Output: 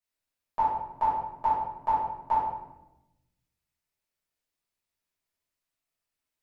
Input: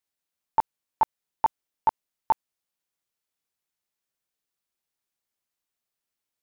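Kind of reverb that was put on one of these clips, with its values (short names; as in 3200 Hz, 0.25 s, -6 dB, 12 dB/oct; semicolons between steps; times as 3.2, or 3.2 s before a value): shoebox room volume 340 m³, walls mixed, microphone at 5.8 m; gain -13.5 dB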